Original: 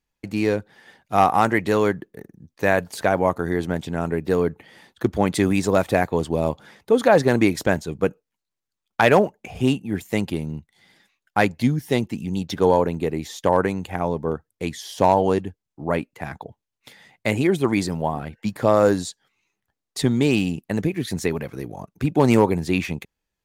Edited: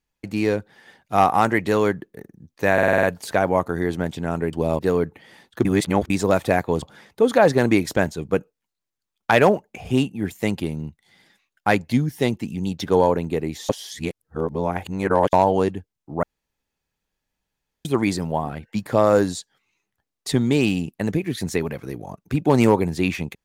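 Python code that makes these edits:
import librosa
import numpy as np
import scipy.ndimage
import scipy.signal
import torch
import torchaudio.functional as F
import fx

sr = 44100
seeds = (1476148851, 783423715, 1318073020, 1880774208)

y = fx.edit(x, sr, fx.stutter(start_s=2.73, slice_s=0.05, count=7),
    fx.reverse_span(start_s=5.09, length_s=0.45),
    fx.move(start_s=6.26, length_s=0.26, to_s=4.23),
    fx.reverse_span(start_s=13.39, length_s=1.64),
    fx.room_tone_fill(start_s=15.93, length_s=1.62), tone=tone)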